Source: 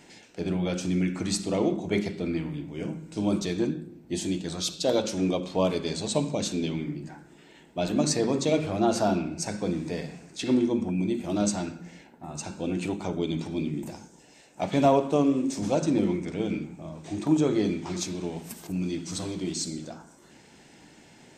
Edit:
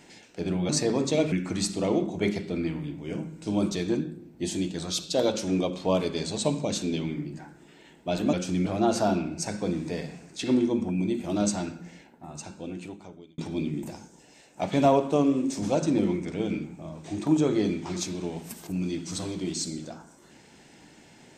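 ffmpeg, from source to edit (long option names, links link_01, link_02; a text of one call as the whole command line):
ffmpeg -i in.wav -filter_complex "[0:a]asplit=6[link_01][link_02][link_03][link_04][link_05][link_06];[link_01]atrim=end=0.692[link_07];[link_02]atrim=start=8.028:end=8.662[link_08];[link_03]atrim=start=1.018:end=8.032[link_09];[link_04]atrim=start=0.688:end=1.022[link_10];[link_05]atrim=start=8.658:end=13.38,asetpts=PTS-STARTPTS,afade=type=out:start_time=3.172:duration=1.55[link_11];[link_06]atrim=start=13.38,asetpts=PTS-STARTPTS,afade=type=in:duration=0.004:curve=hsin[link_12];[link_07][link_08]acrossfade=duration=0.004:curve1=hsin:curve2=hsin[link_13];[link_13][link_09]acrossfade=duration=0.004:curve1=hsin:curve2=hsin[link_14];[link_14][link_10]acrossfade=duration=0.004:curve1=hsin:curve2=hsin[link_15];[link_11][link_12]concat=n=2:v=0:a=1[link_16];[link_15][link_16]acrossfade=duration=0.004:curve1=hsin:curve2=hsin" out.wav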